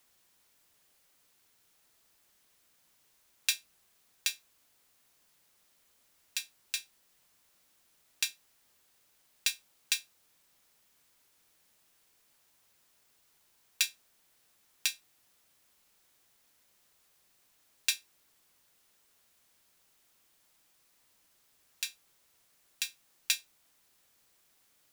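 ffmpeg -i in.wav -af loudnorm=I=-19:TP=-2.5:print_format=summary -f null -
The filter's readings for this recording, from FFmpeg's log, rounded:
Input Integrated:    -34.8 LUFS
Input True Peak:     -12.0 dBTP
Input LRA:             6.4 LU
Input Threshold:     -50.9 LUFS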